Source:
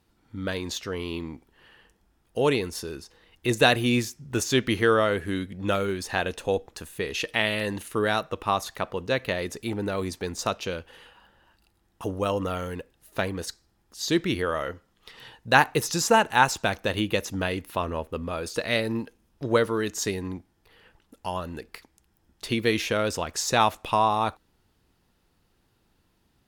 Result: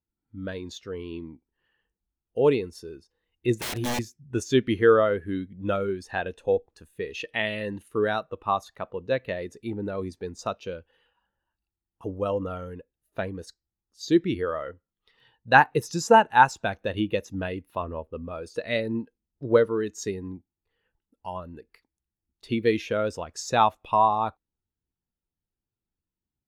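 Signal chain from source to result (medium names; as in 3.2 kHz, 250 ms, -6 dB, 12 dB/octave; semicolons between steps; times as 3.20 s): 3.59–3.99 s: integer overflow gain 19.5 dB; spectral contrast expander 1.5:1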